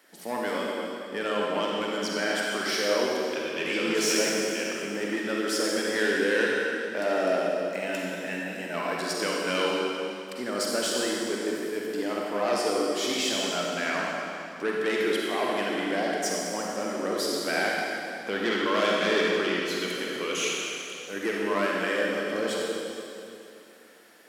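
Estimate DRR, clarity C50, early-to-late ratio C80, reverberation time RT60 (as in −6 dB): −3.0 dB, −2.5 dB, −0.5 dB, 2.8 s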